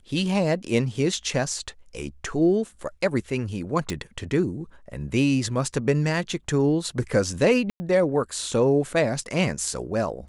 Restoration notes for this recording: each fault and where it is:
3.90 s: pop -15 dBFS
7.70–7.80 s: dropout 100 ms

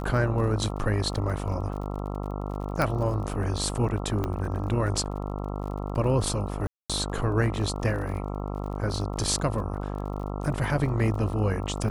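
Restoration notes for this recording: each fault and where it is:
buzz 50 Hz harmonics 27 -32 dBFS
crackle 40 per s -37 dBFS
2.82 s: pop -13 dBFS
4.24 s: pop -16 dBFS
6.67–6.90 s: dropout 226 ms

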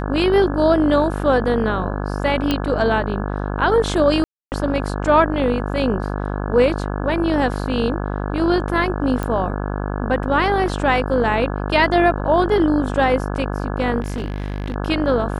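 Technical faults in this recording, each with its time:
buzz 50 Hz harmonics 34 -24 dBFS
2.51 s: pop -6 dBFS
4.24–4.52 s: dropout 279 ms
9.23 s: pop -12 dBFS
14.00–14.76 s: clipped -20.5 dBFS

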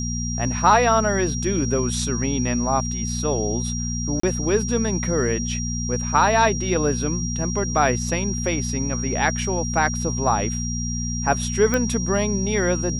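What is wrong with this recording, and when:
hum 60 Hz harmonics 4 -27 dBFS
whine 5.7 kHz -29 dBFS
4.20–4.23 s: dropout 34 ms
11.74 s: pop -8 dBFS

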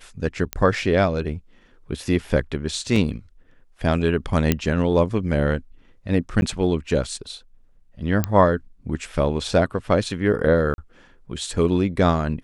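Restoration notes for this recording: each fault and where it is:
0.53 s: pop -8 dBFS
2.96 s: dropout 2.5 ms
4.52 s: pop -4 dBFS
6.41–6.42 s: dropout 11 ms
8.24 s: pop -7 dBFS
10.74–10.78 s: dropout 41 ms

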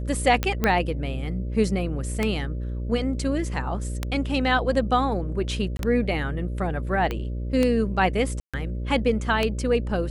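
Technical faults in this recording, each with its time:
buzz 60 Hz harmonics 10 -29 dBFS
tick 33 1/3 rpm -9 dBFS
0.64 s: pop -8 dBFS
5.77–5.79 s: dropout 22 ms
7.11 s: pop -15 dBFS
8.40–8.54 s: dropout 136 ms

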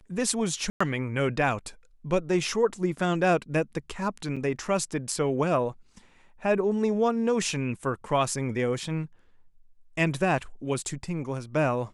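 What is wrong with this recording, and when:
0.70–0.81 s: dropout 105 ms
4.36–4.37 s: dropout 5.8 ms

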